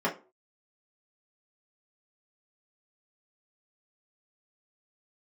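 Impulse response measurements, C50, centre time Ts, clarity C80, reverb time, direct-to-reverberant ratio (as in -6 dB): 13.0 dB, 17 ms, 20.0 dB, not exponential, -6.0 dB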